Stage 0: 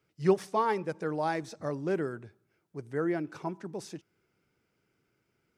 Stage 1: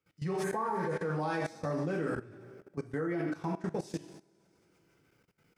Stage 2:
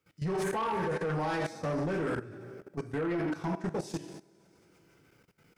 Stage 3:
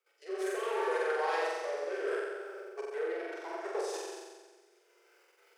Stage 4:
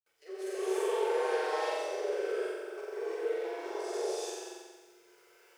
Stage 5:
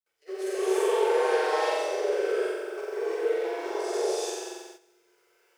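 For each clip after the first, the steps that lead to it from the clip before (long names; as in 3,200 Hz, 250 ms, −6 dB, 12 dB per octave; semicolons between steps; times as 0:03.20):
coupled-rooms reverb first 0.53 s, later 2.2 s, from −18 dB, DRR −2.5 dB; healed spectral selection 0:00.46–0:01.02, 1,500–6,200 Hz after; output level in coarse steps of 18 dB; level +3.5 dB
soft clipping −32.5 dBFS, distortion −12 dB; level +5.5 dB
Chebyshev high-pass filter 360 Hz, order 8; rotating-speaker cabinet horn 0.7 Hz; on a send: flutter between parallel walls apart 7.7 metres, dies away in 1.3 s
dynamic equaliser 1,400 Hz, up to −8 dB, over −49 dBFS, Q 0.86; bit reduction 12 bits; reverb whose tail is shaped and stops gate 370 ms rising, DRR −7.5 dB; level −4.5 dB
noise gate −53 dBFS, range −11 dB; level +6.5 dB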